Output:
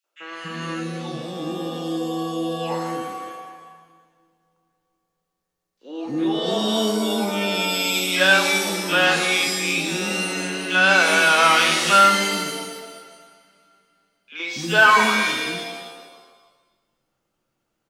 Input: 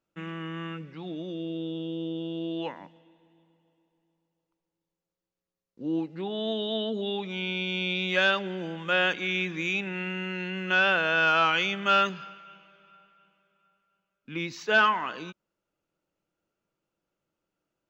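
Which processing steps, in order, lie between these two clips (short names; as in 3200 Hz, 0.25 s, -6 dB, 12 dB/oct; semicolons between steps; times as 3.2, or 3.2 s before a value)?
three bands offset in time highs, mids, lows 40/280 ms, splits 430/2300 Hz; shimmer reverb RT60 1.2 s, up +7 st, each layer -2 dB, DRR 5 dB; gain +7.5 dB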